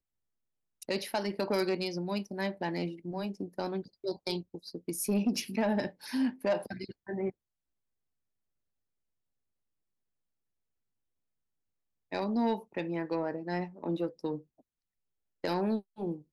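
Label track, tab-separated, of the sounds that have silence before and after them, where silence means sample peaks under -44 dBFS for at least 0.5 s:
0.820000	7.300000	sound
12.120000	14.400000	sound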